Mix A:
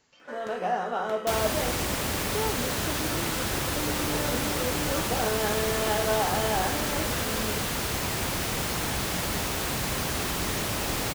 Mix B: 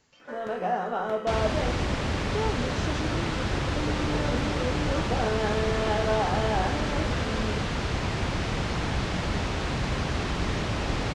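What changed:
first sound: add treble shelf 4.5 kHz -9.5 dB; second sound: add Gaussian low-pass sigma 1.6 samples; master: add bass shelf 170 Hz +7 dB

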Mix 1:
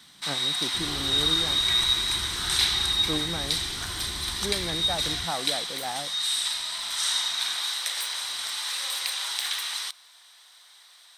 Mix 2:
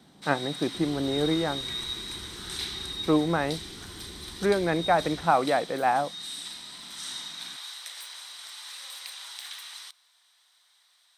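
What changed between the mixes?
speech +11.0 dB; first sound -11.0 dB; master: add bass shelf 160 Hz -10 dB

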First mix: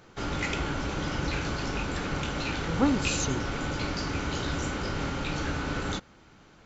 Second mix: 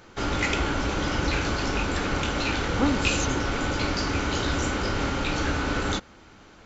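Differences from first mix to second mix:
background +5.5 dB; master: add peaking EQ 150 Hz -7 dB 0.5 oct

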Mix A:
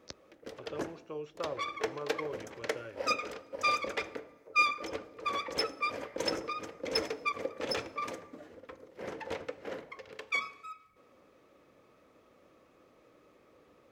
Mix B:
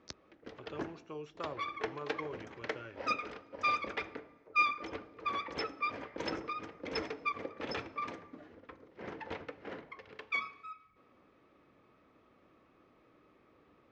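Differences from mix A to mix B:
background: add distance through air 190 m; master: add peaking EQ 530 Hz -7.5 dB 0.55 oct

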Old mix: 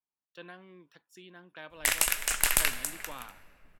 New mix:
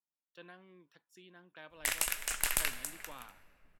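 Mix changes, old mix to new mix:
speech -6.0 dB; background -6.5 dB

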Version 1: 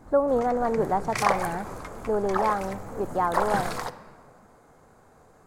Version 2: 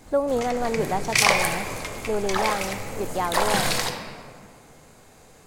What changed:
background: send +11.5 dB; master: add resonant high shelf 1.9 kHz +10.5 dB, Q 1.5

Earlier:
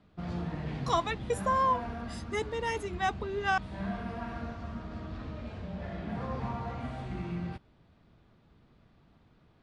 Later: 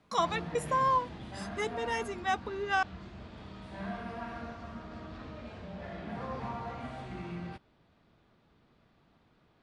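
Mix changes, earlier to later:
speech: entry -0.75 s; master: add bass shelf 190 Hz -9 dB

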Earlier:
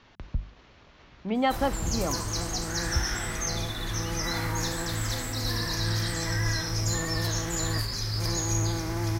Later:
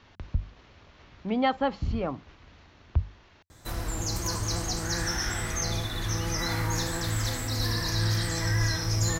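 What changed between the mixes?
background: entry +2.15 s; master: add peaking EQ 87 Hz +7 dB 0.44 oct

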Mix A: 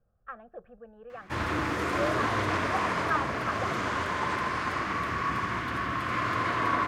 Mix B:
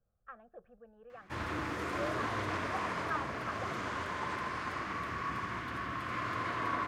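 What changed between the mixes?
speech -8.0 dB; background -7.5 dB

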